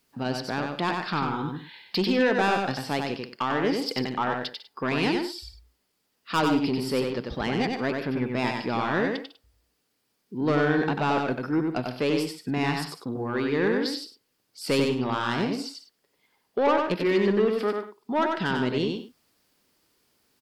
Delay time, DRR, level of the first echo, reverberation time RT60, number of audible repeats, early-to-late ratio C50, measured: 94 ms, none, -4.0 dB, none, 3, none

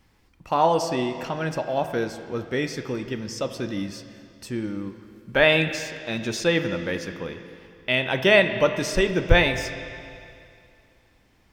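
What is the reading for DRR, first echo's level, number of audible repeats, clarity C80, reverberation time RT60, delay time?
8.0 dB, none, none, 10.0 dB, 2.5 s, none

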